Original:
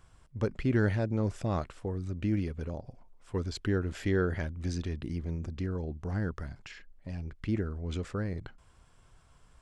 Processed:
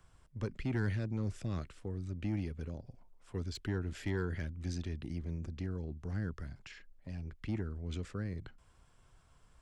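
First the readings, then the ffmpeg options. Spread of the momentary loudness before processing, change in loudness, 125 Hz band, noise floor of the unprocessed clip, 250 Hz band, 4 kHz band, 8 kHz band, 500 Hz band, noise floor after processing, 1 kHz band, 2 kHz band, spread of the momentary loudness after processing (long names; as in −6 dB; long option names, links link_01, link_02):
14 LU, −6.0 dB, −4.5 dB, −61 dBFS, −6.5 dB, −4.5 dB, −4.0 dB, −9.5 dB, −65 dBFS, −9.5 dB, −6.5 dB, 11 LU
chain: -filter_complex "[0:a]acrossover=split=120|490|1300[link_01][link_02][link_03][link_04];[link_02]asoftclip=type=tanh:threshold=-27.5dB[link_05];[link_03]acompressor=threshold=-58dB:ratio=6[link_06];[link_04]volume=32.5dB,asoftclip=hard,volume=-32.5dB[link_07];[link_01][link_05][link_06][link_07]amix=inputs=4:normalize=0,volume=-4dB"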